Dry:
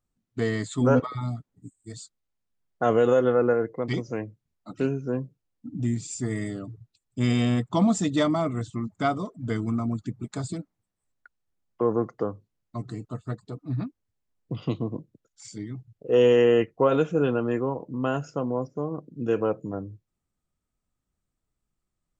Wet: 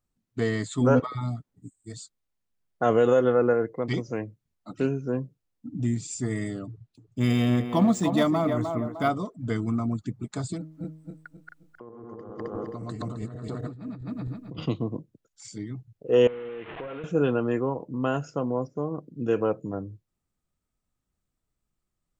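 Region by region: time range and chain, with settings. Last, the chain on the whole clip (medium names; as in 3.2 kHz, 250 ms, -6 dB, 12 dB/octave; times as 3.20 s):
6.67–9.10 s: band-passed feedback delay 305 ms, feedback 45%, band-pass 670 Hz, level -4 dB + decimation joined by straight lines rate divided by 3×
10.58–14.66 s: backward echo that repeats 132 ms, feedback 59%, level -1 dB + de-hum 157.5 Hz, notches 4 + compressor with a negative ratio -37 dBFS
16.27–17.04 s: one-bit delta coder 16 kbps, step -31.5 dBFS + tilt EQ +2 dB/octave + compression 10:1, threshold -33 dBFS
whole clip: none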